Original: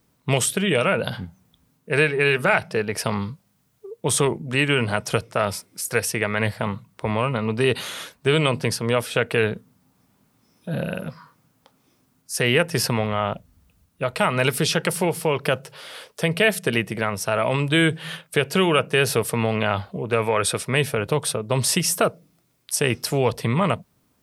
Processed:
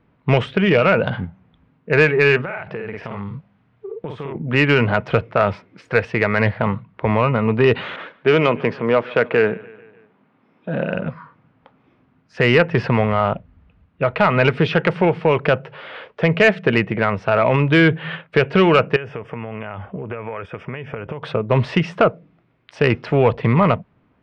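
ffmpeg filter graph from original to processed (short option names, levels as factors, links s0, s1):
-filter_complex "[0:a]asettb=1/sr,asplit=3[s0][s1][s2];[s0]atrim=end=2.414[s3];[s1]atrim=start=2.41:end=4.35,asetpts=PTS-STARTPTS,afade=t=in:d=0.004:c=qsin,afade=t=out:st=1.936:d=0.004:c=qsin,asplit=2[s4][s5];[s5]adelay=50,volume=0.708[s6];[s4][s6]amix=inputs=2:normalize=0,atrim=end_sample=85554,acompressor=threshold=0.0282:ratio=8:attack=3.2:release=140:knee=1:detection=peak[s7];[s2]atrim=start=4.346[s8];[s3][s7]acrossfade=d=0.004:c1=hsin:c2=qsin[s9];[s9][s8]acrossfade=d=0.004:c1=qsin:c2=hsin,asettb=1/sr,asplit=3[s10][s11][s12];[s10]atrim=end=7.964[s13];[s11]atrim=start=7.96:end=10.95,asetpts=PTS-STARTPTS,afade=t=in:d=0.004:c=qsin,afade=t=out:st=2.986:d=0.004:c=qsin,adynamicequalizer=threshold=0.0141:dfrequency=3400:dqfactor=0.85:tfrequency=3400:tqfactor=0.85:attack=5:release=100:ratio=0.375:range=2.5:mode=cutabove:tftype=bell,highpass=200,lowpass=5200,aecho=1:1:147|294|441|588:0.0794|0.0445|0.0249|0.0139,atrim=end_sample=131859[s14];[s12]atrim=start=10.946[s15];[s13][s14]acrossfade=d=0.004:c1=hsin:c2=qsin[s16];[s16][s15]acrossfade=d=0.004:c1=qsin:c2=hsin,asettb=1/sr,asplit=3[s17][s18][s19];[s17]atrim=end=18.964[s20];[s18]atrim=start=18.96:end=21.23,asetpts=PTS-STARTPTS,afade=t=in:d=0.004:c=qsin,afade=t=out:st=2.266:d=0.004:c=qsin,acompressor=threshold=0.0316:ratio=16:attack=3.2:release=140:knee=1:detection=peak,asuperstop=centerf=4100:order=4:qfactor=2.5[s21];[s19]atrim=start=21.226[s22];[s20][s21]acrossfade=d=0.004:c1=hsin:c2=qsin[s23];[s23][s22]acrossfade=d=0.004:c1=qsin:c2=hsin,lowpass=f=2600:w=0.5412,lowpass=f=2600:w=1.3066,acontrast=67"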